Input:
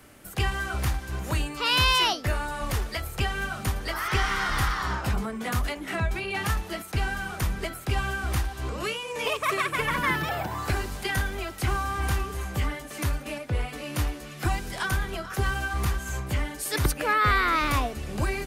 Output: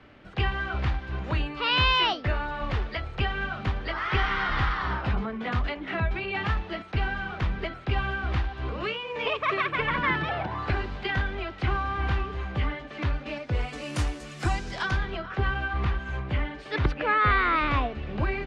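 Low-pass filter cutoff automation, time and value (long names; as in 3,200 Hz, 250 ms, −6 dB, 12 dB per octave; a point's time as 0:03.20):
low-pass filter 24 dB per octave
0:13.12 3,700 Hz
0:13.87 8,700 Hz
0:14.38 8,700 Hz
0:15.28 3,400 Hz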